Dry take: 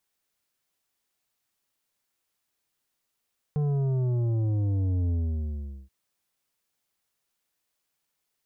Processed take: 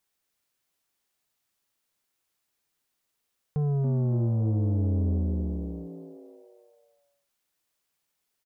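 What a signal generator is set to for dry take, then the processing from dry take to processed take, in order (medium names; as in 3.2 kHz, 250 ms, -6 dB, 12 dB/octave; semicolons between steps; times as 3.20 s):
sub drop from 150 Hz, over 2.33 s, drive 9 dB, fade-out 0.79 s, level -24 dB
frequency-shifting echo 279 ms, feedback 46%, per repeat +100 Hz, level -9.5 dB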